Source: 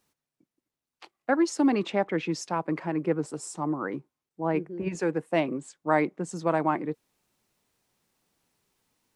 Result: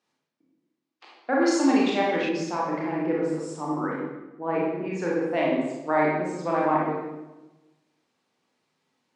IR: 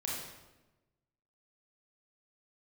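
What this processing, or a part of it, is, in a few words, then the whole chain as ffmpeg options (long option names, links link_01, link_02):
supermarket ceiling speaker: -filter_complex "[0:a]highpass=210,lowpass=5100[link_01];[1:a]atrim=start_sample=2205[link_02];[link_01][link_02]afir=irnorm=-1:irlink=0,asettb=1/sr,asplit=3[link_03][link_04][link_05];[link_03]atrim=end=1.424[link_06];[link_04]atrim=start=1.42:end=2.29,asetpts=PTS-STARTPTS,afade=type=in:duration=0.004:curve=qsin,afade=type=out:start_time=0.866:duration=0.004:curve=qsin,highshelf=frequency=2900:gain=10.5[link_07];[link_05]atrim=start=2.286[link_08];[link_06][link_07]acrossfade=duration=0.004:curve1=hsin:curve2=qsin[link_09];[link_09][link_08]acrossfade=duration=0.004:curve1=qsin:curve2=hsin"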